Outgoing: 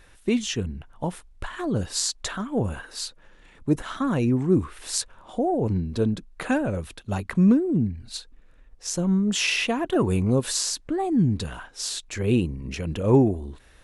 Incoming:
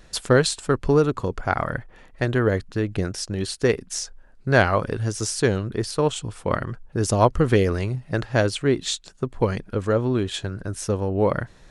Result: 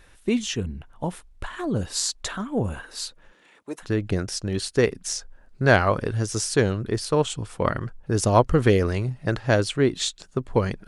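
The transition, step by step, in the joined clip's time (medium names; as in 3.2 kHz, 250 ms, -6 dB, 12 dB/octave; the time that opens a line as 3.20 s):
outgoing
3.31–3.86 s: high-pass 160 Hz -> 1 kHz
3.82 s: go over to incoming from 2.68 s, crossfade 0.08 s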